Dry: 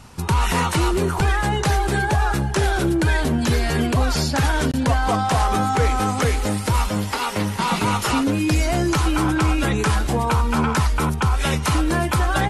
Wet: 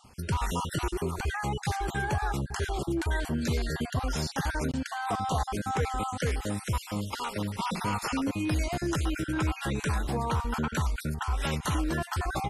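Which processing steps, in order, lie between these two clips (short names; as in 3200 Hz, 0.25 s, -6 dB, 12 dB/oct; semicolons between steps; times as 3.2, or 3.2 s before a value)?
random spectral dropouts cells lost 34%; gain -9 dB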